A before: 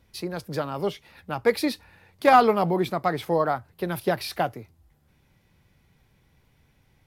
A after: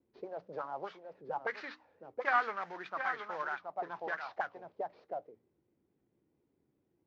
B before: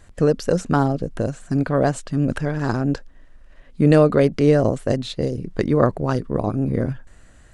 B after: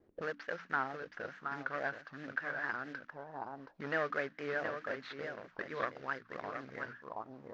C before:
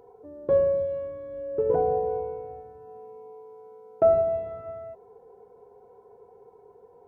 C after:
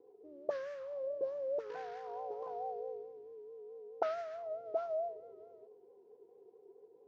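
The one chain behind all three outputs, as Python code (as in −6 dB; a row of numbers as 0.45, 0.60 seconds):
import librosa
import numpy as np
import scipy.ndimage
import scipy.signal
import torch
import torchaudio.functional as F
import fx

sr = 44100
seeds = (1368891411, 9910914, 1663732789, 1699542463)

y = fx.cvsd(x, sr, bps=32000)
y = y + 10.0 ** (-7.5 / 20.0) * np.pad(y, (int(722 * sr / 1000.0), 0))[:len(y)]
y = fx.auto_wah(y, sr, base_hz=320.0, top_hz=1600.0, q=3.5, full_db=-21.0, direction='up')
y = fx.hum_notches(y, sr, base_hz=60, count=5)
y = fx.vibrato(y, sr, rate_hz=4.6, depth_cents=77.0)
y = y * 10.0 ** (-1.5 / 20.0)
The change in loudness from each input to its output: −13.5, −19.5, −15.0 LU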